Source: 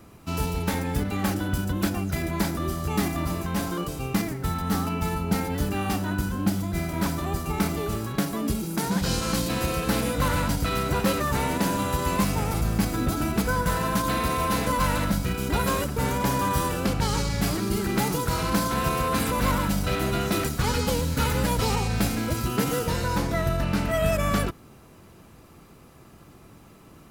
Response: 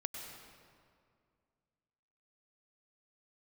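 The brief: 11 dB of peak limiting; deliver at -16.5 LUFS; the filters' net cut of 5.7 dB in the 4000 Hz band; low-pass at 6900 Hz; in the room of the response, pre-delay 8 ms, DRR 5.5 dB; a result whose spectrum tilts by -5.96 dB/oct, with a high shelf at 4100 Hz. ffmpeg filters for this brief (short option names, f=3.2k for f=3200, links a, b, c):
-filter_complex "[0:a]lowpass=6.9k,equalizer=f=4k:t=o:g=-4.5,highshelf=f=4.1k:g=-4,alimiter=limit=-22dB:level=0:latency=1,asplit=2[a][b];[1:a]atrim=start_sample=2205,adelay=8[c];[b][c]afir=irnorm=-1:irlink=0,volume=-5dB[d];[a][d]amix=inputs=2:normalize=0,volume=14dB"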